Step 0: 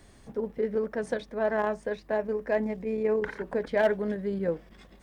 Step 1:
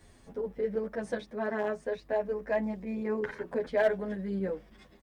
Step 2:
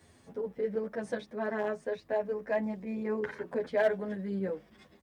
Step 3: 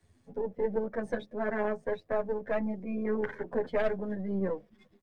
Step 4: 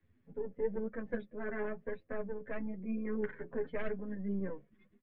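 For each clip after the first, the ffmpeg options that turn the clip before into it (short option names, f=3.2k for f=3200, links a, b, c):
-filter_complex "[0:a]asplit=2[a][b];[b]adelay=9.4,afreqshift=0.56[c];[a][c]amix=inputs=2:normalize=1"
-af "highpass=f=72:w=0.5412,highpass=f=72:w=1.3066,volume=-1dB"
-filter_complex "[0:a]aeval=exprs='if(lt(val(0),0),0.447*val(0),val(0))':c=same,afftdn=nr=13:nf=-51,acrossover=split=120|430|3000[a][b][c][d];[c]alimiter=level_in=4dB:limit=-24dB:level=0:latency=1:release=388,volume=-4dB[e];[a][b][e][d]amix=inputs=4:normalize=0,volume=4.5dB"
-af "lowpass=f=2.7k:w=0.5412,lowpass=f=2.7k:w=1.3066,equalizer=f=760:t=o:w=1:g=-10,flanger=delay=3.7:depth=3.7:regen=52:speed=0.98:shape=sinusoidal"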